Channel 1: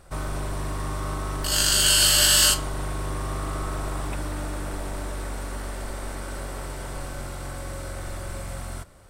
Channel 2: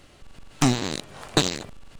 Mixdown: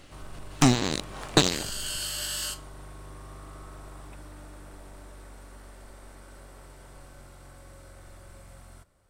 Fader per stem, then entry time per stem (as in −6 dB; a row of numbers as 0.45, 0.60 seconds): −15.0, +0.5 decibels; 0.00, 0.00 seconds